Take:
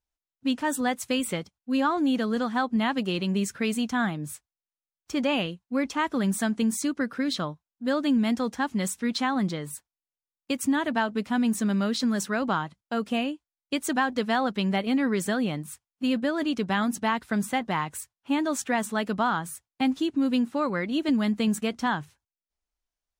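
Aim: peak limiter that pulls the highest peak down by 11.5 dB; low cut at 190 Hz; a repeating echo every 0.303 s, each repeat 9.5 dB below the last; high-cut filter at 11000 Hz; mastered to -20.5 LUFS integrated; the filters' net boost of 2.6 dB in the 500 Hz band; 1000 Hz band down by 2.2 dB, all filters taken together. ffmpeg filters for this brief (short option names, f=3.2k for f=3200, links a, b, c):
-af "highpass=190,lowpass=11k,equalizer=f=500:t=o:g=4.5,equalizer=f=1k:t=o:g=-4.5,alimiter=limit=-23dB:level=0:latency=1,aecho=1:1:303|606|909|1212:0.335|0.111|0.0365|0.012,volume=11.5dB"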